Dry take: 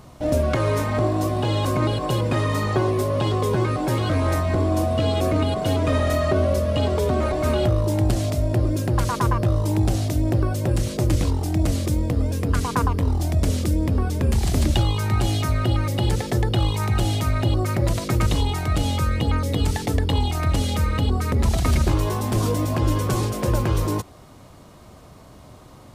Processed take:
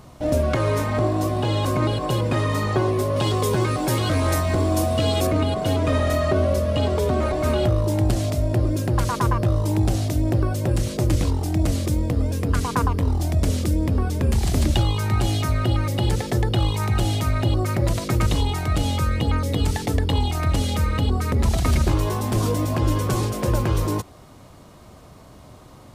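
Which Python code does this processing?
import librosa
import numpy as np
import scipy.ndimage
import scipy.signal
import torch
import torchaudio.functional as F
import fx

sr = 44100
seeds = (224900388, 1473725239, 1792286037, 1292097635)

y = fx.high_shelf(x, sr, hz=3600.0, db=9.0, at=(3.16, 5.27))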